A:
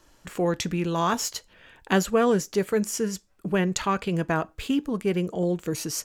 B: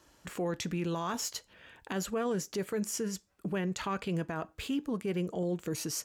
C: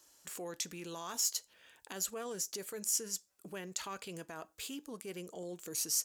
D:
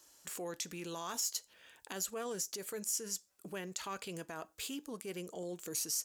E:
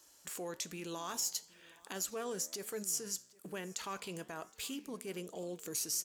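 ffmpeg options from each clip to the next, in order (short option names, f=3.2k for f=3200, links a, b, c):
-filter_complex "[0:a]highpass=51,asplit=2[a][b];[b]acompressor=threshold=-33dB:ratio=6,volume=-3dB[c];[a][c]amix=inputs=2:normalize=0,alimiter=limit=-18dB:level=0:latency=1:release=24,volume=-7.5dB"
-af "bass=f=250:g=-10,treble=f=4k:g=15,volume=-8.5dB"
-af "alimiter=level_in=2.5dB:limit=-24dB:level=0:latency=1:release=129,volume=-2.5dB,volume=1.5dB"
-af "flanger=delay=8.9:depth=7.5:regen=89:speed=1.1:shape=sinusoidal,aecho=1:1:768|1536:0.0631|0.0246,volume=4.5dB"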